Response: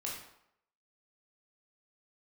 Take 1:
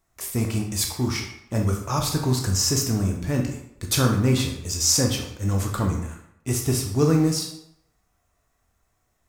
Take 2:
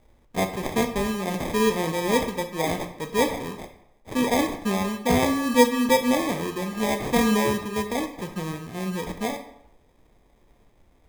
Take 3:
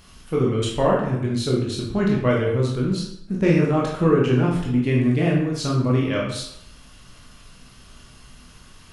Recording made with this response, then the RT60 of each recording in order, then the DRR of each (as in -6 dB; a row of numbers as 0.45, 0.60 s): 3; 0.75, 0.75, 0.75 s; 1.5, 6.0, -3.5 dB